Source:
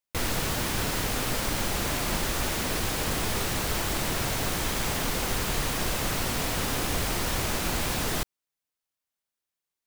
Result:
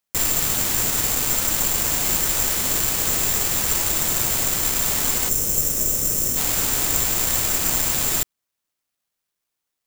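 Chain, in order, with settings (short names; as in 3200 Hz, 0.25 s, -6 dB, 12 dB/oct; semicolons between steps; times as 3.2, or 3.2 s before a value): careless resampling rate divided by 6×, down none, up zero stuff; spectral gain 5.29–6.37, 630–5100 Hz -10 dB; gain -1 dB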